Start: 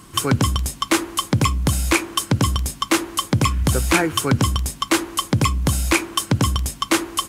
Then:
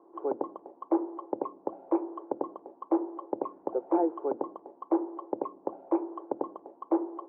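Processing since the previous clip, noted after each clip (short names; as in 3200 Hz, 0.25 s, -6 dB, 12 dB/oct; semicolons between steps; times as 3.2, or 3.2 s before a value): elliptic band-pass 340–880 Hz, stop band 80 dB; gain -3.5 dB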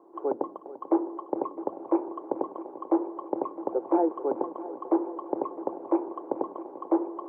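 multi-head echo 0.22 s, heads second and third, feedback 72%, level -15.5 dB; gain +2.5 dB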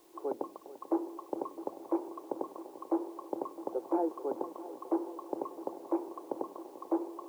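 requantised 10-bit, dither triangular; gain -7 dB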